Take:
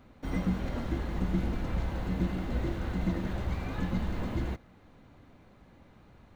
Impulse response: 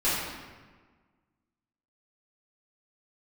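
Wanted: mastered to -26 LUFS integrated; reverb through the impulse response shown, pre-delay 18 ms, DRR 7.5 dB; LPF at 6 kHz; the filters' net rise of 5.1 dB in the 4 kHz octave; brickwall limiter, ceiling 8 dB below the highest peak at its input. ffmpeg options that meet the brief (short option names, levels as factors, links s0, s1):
-filter_complex "[0:a]lowpass=6000,equalizer=f=4000:t=o:g=7,alimiter=limit=0.0668:level=0:latency=1,asplit=2[s0][s1];[1:a]atrim=start_sample=2205,adelay=18[s2];[s1][s2]afir=irnorm=-1:irlink=0,volume=0.0944[s3];[s0][s3]amix=inputs=2:normalize=0,volume=2.66"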